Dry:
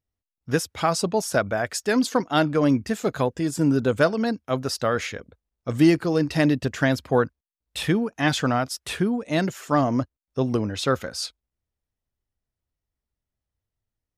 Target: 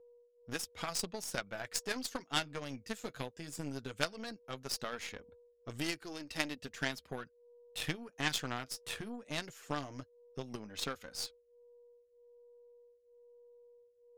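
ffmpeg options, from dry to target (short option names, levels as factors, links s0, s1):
-filter_complex "[0:a]aeval=exprs='val(0)+0.00562*sin(2*PI*480*n/s)':c=same,acrossover=split=1800[s0][s1];[s0]acompressor=threshold=0.0282:ratio=5[s2];[s2][s1]amix=inputs=2:normalize=0,flanger=delay=2.4:depth=6.6:regen=-40:speed=0.17:shape=triangular,aeval=exprs='0.15*(cos(1*acos(clip(val(0)/0.15,-1,1)))-cos(1*PI/2))+0.0376*(cos(3*acos(clip(val(0)/0.15,-1,1)))-cos(3*PI/2))+0.00299*(cos(4*acos(clip(val(0)/0.15,-1,1)))-cos(4*PI/2))+0.00168*(cos(7*acos(clip(val(0)/0.15,-1,1)))-cos(7*PI/2))+0.00119*(cos(8*acos(clip(val(0)/0.15,-1,1)))-cos(8*PI/2))':c=same,volume=1.88"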